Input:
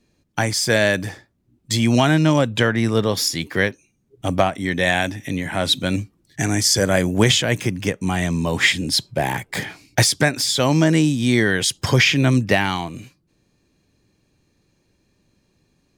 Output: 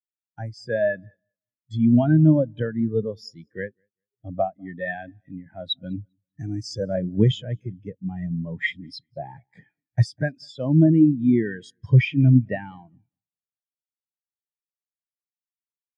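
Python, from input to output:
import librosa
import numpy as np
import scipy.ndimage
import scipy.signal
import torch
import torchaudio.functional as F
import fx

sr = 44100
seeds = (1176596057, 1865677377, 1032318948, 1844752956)

p1 = fx.law_mismatch(x, sr, coded='mu')
p2 = p1 + fx.echo_feedback(p1, sr, ms=198, feedback_pct=41, wet_db=-16.5, dry=0)
p3 = fx.spectral_expand(p2, sr, expansion=2.5)
y = p3 * 10.0 ** (-3.0 / 20.0)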